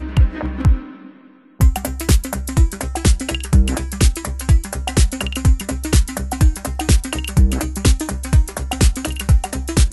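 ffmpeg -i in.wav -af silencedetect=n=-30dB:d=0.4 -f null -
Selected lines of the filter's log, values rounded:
silence_start: 1.09
silence_end: 1.60 | silence_duration: 0.51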